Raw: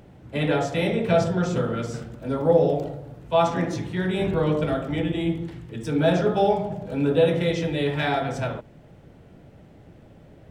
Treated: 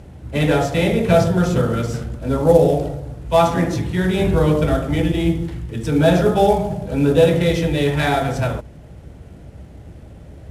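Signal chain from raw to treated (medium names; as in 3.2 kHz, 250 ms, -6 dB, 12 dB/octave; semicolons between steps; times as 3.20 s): CVSD coder 64 kbps; peaking EQ 64 Hz +14.5 dB 0.98 oct; trim +5.5 dB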